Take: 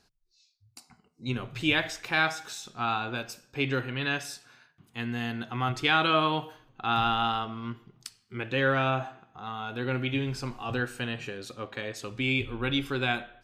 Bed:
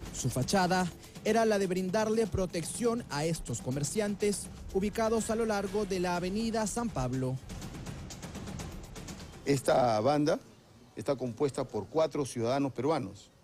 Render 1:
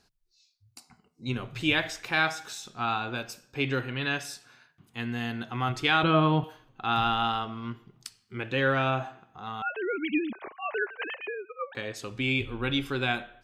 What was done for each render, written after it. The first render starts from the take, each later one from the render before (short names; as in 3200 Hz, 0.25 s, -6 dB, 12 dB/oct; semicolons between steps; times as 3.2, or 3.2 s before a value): 6.03–6.44 RIAA curve playback; 9.62–11.75 sine-wave speech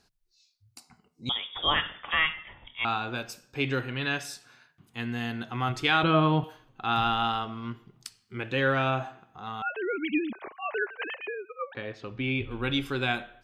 1.29–2.85 inverted band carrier 3500 Hz; 11.74–12.51 air absorption 260 m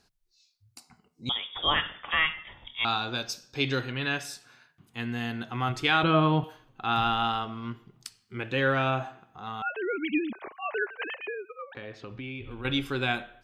2.45–3.92 band shelf 4700 Hz +9 dB 1.1 oct; 11.43–12.65 compressor 4:1, threshold -36 dBFS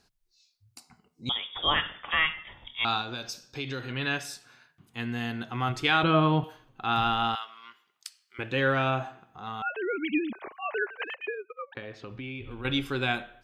3.01–3.9 compressor 2.5:1, threshold -33 dBFS; 7.35–8.39 HPF 1400 Hz; 10.99–11.82 transient shaper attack +4 dB, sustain -11 dB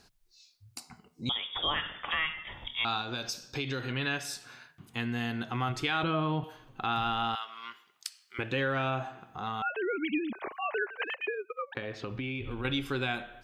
in parallel at 0 dB: limiter -18.5 dBFS, peak gain reduction 9.5 dB; on the sum: compressor 2:1, threshold -35 dBFS, peak gain reduction 11.5 dB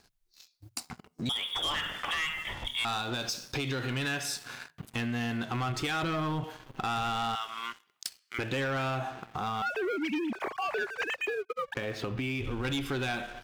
sample leveller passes 3; compressor 2:1, threshold -37 dBFS, peak gain reduction 9.5 dB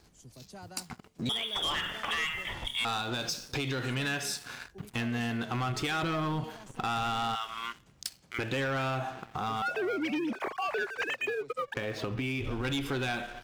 add bed -20.5 dB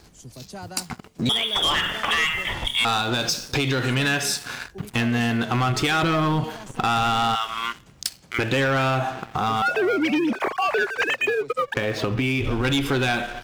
gain +10 dB